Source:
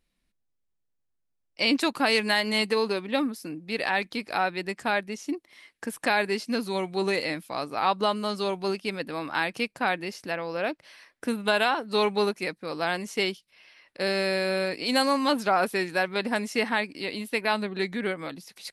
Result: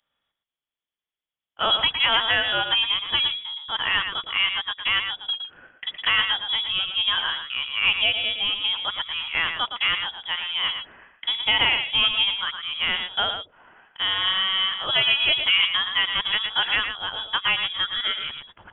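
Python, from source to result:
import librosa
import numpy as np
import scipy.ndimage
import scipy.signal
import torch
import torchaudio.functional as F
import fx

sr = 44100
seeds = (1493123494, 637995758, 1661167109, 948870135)

p1 = scipy.signal.sosfilt(scipy.signal.butter(2, 180.0, 'highpass', fs=sr, output='sos'), x)
p2 = p1 + fx.echo_single(p1, sr, ms=114, db=-7.5, dry=0)
p3 = fx.freq_invert(p2, sr, carrier_hz=3600)
y = p3 * librosa.db_to_amplitude(3.0)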